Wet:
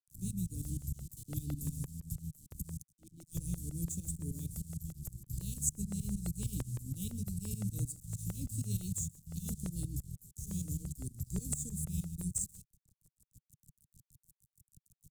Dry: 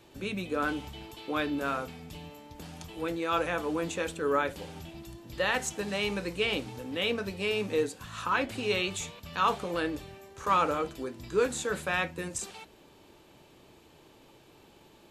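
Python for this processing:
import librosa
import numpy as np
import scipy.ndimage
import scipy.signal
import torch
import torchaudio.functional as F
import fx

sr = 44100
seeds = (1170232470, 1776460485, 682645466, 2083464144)

y = fx.vowel_filter(x, sr, vowel='i', at=(2.81, 3.34), fade=0.02)
y = y + 10.0 ** (-17.5 / 20.0) * np.pad(y, (int(128 * sr / 1000.0), 0))[:len(y)]
y = fx.tremolo_shape(y, sr, shape='saw_up', hz=6.5, depth_pct=85)
y = np.sign(y) * np.maximum(np.abs(y) - 10.0 ** (-52.5 / 20.0), 0.0)
y = scipy.signal.sosfilt(scipy.signal.ellip(3, 1.0, 70, [150.0, 7900.0], 'bandstop', fs=sr, output='sos'), y)
y = fx.buffer_crackle(y, sr, first_s=0.65, period_s=0.17, block=64, kind='repeat')
y = fx.band_squash(y, sr, depth_pct=40)
y = F.gain(torch.from_numpy(y), 13.5).numpy()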